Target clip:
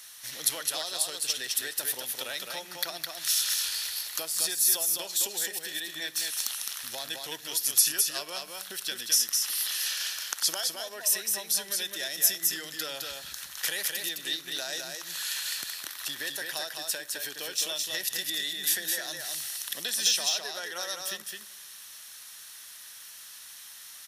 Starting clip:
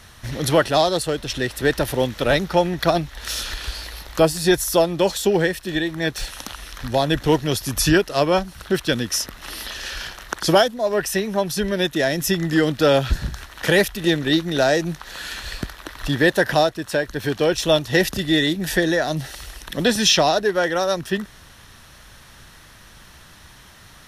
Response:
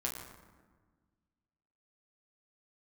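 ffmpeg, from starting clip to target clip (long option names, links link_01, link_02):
-filter_complex "[0:a]acompressor=threshold=-23dB:ratio=4,aderivative,aecho=1:1:211:0.631,asplit=2[link_01][link_02];[1:a]atrim=start_sample=2205,asetrate=39249,aresample=44100,adelay=53[link_03];[link_02][link_03]afir=irnorm=-1:irlink=0,volume=-22.5dB[link_04];[link_01][link_04]amix=inputs=2:normalize=0,volume=4.5dB"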